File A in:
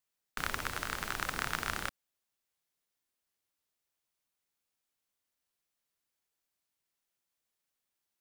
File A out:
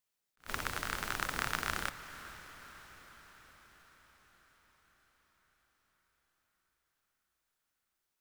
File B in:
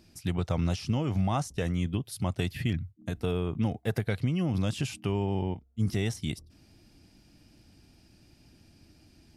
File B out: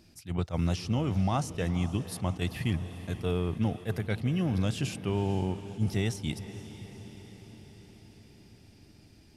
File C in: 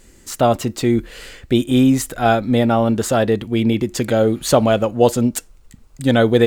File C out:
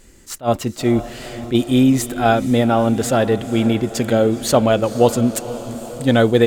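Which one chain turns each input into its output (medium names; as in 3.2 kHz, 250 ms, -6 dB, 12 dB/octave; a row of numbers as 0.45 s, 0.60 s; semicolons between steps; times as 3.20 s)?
echo that smears into a reverb 478 ms, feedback 63%, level -14 dB; attacks held to a fixed rise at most 320 dB/s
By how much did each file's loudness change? -1.5 LU, -0.5 LU, 0.0 LU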